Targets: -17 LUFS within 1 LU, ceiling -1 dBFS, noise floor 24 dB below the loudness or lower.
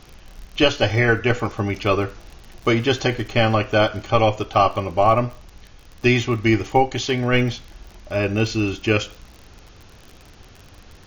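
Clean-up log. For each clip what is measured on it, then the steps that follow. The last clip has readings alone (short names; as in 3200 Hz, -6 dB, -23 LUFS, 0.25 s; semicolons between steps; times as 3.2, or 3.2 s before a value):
ticks 44/s; loudness -20.0 LUFS; peak -3.0 dBFS; loudness target -17.0 LUFS
-> de-click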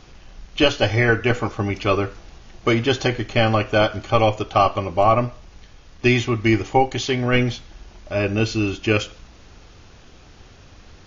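ticks 0/s; loudness -20.0 LUFS; peak -3.0 dBFS; loudness target -17.0 LUFS
-> gain +3 dB; limiter -1 dBFS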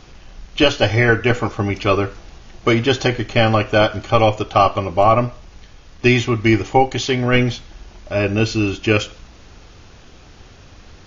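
loudness -17.5 LUFS; peak -1.0 dBFS; noise floor -44 dBFS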